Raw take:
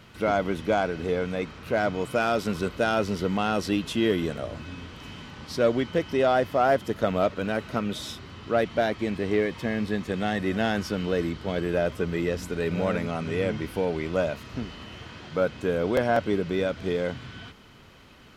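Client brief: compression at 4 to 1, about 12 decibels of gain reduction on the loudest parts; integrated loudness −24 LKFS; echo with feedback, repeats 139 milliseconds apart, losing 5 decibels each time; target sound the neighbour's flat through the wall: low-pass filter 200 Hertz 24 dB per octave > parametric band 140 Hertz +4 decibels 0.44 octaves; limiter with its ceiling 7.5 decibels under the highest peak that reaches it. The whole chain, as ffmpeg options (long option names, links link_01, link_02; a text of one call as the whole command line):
ffmpeg -i in.wav -af "acompressor=threshold=-33dB:ratio=4,alimiter=level_in=3.5dB:limit=-24dB:level=0:latency=1,volume=-3.5dB,lowpass=frequency=200:width=0.5412,lowpass=frequency=200:width=1.3066,equalizer=frequency=140:width_type=o:width=0.44:gain=4,aecho=1:1:139|278|417|556|695|834|973:0.562|0.315|0.176|0.0988|0.0553|0.031|0.0173,volume=19.5dB" out.wav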